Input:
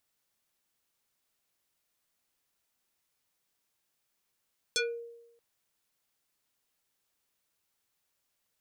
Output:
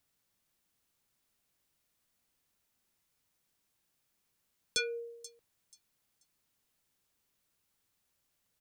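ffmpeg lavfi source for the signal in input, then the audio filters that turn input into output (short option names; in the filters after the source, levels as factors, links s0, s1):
-f lavfi -i "aevalsrc='0.0631*pow(10,-3*t/0.93)*sin(2*PI*468*t+4.3*pow(10,-3*t/0.26)*sin(2*PI*4.14*468*t))':d=0.63:s=44100"
-filter_complex "[0:a]acrossover=split=280|1400|5400[s0][s1][s2][s3];[s0]acontrast=63[s4];[s1]alimiter=level_in=5.01:limit=0.0631:level=0:latency=1,volume=0.2[s5];[s3]aecho=1:1:484|968|1452:0.355|0.0887|0.0222[s6];[s4][s5][s2][s6]amix=inputs=4:normalize=0"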